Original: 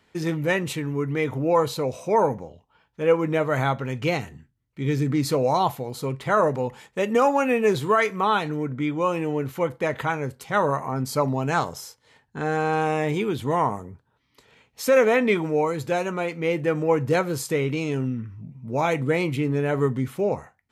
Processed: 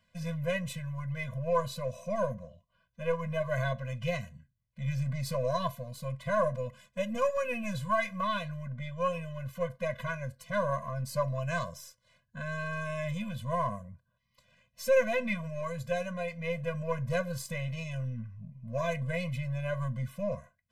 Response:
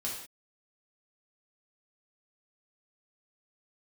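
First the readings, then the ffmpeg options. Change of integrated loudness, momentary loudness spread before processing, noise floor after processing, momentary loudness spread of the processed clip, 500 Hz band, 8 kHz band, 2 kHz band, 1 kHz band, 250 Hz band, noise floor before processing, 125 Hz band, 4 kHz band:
-9.5 dB, 9 LU, -77 dBFS, 9 LU, -9.5 dB, -9.0 dB, -8.0 dB, -11.0 dB, -12.5 dB, -69 dBFS, -6.0 dB, -8.5 dB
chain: -af "aeval=exprs='if(lt(val(0),0),0.708*val(0),val(0))':c=same,afftfilt=real='re*eq(mod(floor(b*sr/1024/240),2),0)':imag='im*eq(mod(floor(b*sr/1024/240),2),0)':win_size=1024:overlap=0.75,volume=0.596"

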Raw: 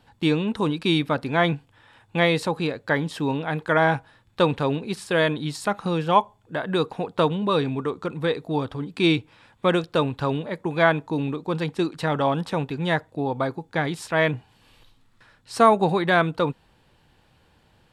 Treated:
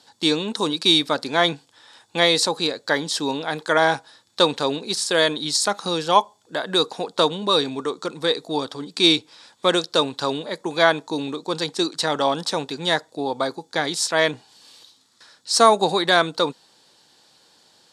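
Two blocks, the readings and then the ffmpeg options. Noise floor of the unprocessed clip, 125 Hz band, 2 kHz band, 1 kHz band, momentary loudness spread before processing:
-61 dBFS, -8.5 dB, +1.5 dB, +2.0 dB, 8 LU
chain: -af "highpass=280,lowpass=5700,aexciter=amount=6.8:drive=7.2:freq=3900,volume=1.26"

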